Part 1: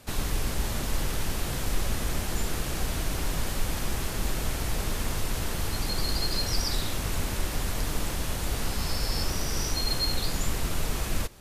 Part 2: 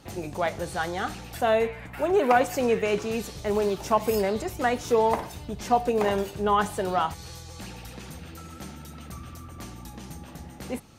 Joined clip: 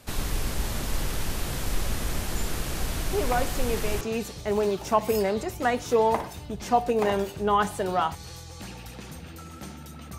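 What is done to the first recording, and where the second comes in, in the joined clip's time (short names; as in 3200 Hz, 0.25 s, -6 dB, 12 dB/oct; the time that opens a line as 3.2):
part 1
3.13 add part 2 from 2.12 s 0.88 s -6.5 dB
4.01 switch to part 2 from 3 s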